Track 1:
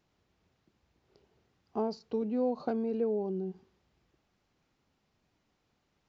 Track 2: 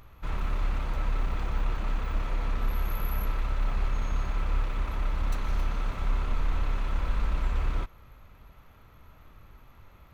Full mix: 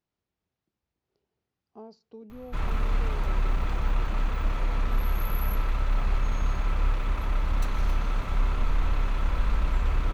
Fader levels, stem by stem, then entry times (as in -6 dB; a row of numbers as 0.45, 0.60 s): -13.0, +2.5 dB; 0.00, 2.30 s